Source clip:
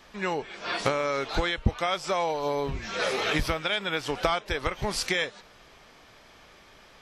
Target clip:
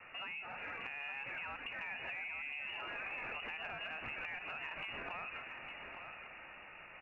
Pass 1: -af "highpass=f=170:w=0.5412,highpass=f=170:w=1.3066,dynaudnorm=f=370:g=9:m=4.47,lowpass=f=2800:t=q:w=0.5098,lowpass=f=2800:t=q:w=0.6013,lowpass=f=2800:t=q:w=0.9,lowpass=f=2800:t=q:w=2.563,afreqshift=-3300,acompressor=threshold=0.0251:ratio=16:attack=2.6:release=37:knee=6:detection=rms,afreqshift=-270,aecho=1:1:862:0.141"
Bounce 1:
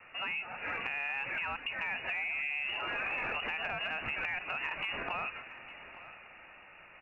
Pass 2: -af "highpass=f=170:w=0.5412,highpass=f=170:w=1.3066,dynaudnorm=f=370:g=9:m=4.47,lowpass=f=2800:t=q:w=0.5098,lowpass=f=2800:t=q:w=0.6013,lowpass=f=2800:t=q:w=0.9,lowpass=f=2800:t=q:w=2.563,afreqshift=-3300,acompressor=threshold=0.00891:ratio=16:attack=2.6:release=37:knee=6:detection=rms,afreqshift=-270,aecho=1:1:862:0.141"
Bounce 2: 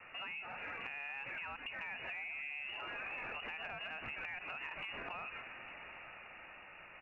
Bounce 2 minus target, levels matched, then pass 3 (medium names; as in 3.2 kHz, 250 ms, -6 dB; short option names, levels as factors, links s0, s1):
echo-to-direct -9 dB
-af "highpass=f=170:w=0.5412,highpass=f=170:w=1.3066,dynaudnorm=f=370:g=9:m=4.47,lowpass=f=2800:t=q:w=0.5098,lowpass=f=2800:t=q:w=0.6013,lowpass=f=2800:t=q:w=0.9,lowpass=f=2800:t=q:w=2.563,afreqshift=-3300,acompressor=threshold=0.00891:ratio=16:attack=2.6:release=37:knee=6:detection=rms,afreqshift=-270,aecho=1:1:862:0.398"